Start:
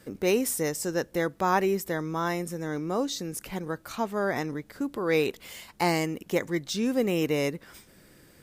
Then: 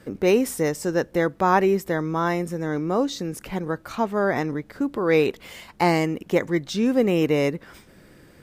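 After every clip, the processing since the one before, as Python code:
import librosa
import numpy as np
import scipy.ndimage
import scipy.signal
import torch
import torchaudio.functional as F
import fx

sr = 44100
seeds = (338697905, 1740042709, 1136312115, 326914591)

y = fx.high_shelf(x, sr, hz=4200.0, db=-10.5)
y = y * librosa.db_to_amplitude(6.0)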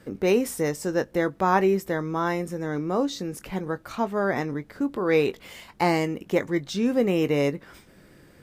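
y = fx.doubler(x, sr, ms=21.0, db=-13.0)
y = y * librosa.db_to_amplitude(-2.5)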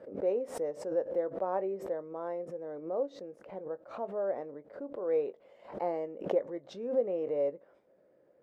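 y = fx.bandpass_q(x, sr, hz=560.0, q=4.7)
y = fx.pre_swell(y, sr, db_per_s=120.0)
y = y * librosa.db_to_amplitude(-2.0)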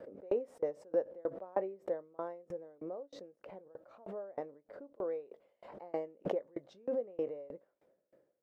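y = fx.tremolo_decay(x, sr, direction='decaying', hz=3.2, depth_db=29)
y = y * librosa.db_to_amplitude(3.0)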